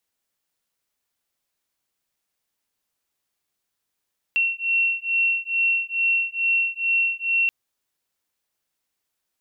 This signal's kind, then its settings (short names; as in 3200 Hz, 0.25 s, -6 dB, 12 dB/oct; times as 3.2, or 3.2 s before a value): beating tones 2720 Hz, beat 2.3 Hz, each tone -22.5 dBFS 3.13 s